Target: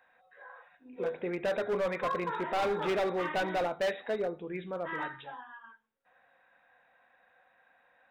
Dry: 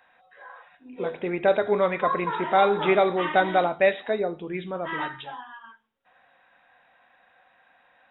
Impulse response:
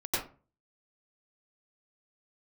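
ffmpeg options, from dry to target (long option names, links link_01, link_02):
-af "equalizer=frequency=500:width_type=o:width=0.33:gain=5,equalizer=frequency=1600:width_type=o:width=0.33:gain=3,equalizer=frequency=3150:width_type=o:width=0.33:gain=-6,volume=19.5dB,asoftclip=hard,volume=-19.5dB,volume=-7dB"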